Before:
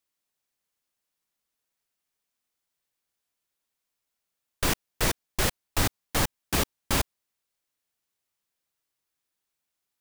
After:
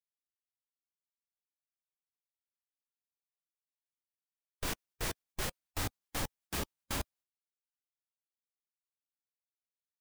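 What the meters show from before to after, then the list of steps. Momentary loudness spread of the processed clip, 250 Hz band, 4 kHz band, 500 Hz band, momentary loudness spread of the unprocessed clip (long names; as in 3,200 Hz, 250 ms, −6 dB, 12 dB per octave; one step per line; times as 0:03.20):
1 LU, −11.5 dB, −11.0 dB, −11.5 dB, 1 LU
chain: two-band tremolo in antiphase 8 Hz, depth 50%, crossover 820 Hz
harmonic and percussive parts rebalanced percussive −7 dB
downward expander −55 dBFS
level −4 dB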